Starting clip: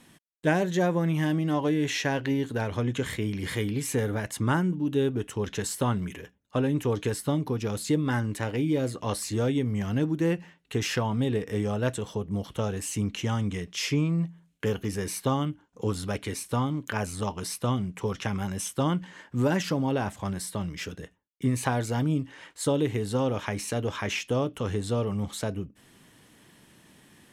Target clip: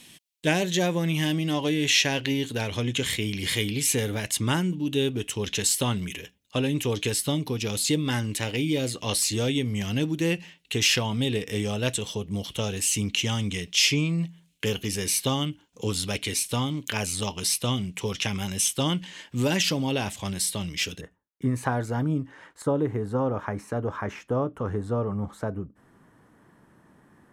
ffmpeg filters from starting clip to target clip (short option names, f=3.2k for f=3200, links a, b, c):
-af "asetnsamples=n=441:p=0,asendcmd='21.01 highshelf g -6;22.62 highshelf g -13',highshelf=f=2k:t=q:w=1.5:g=9.5"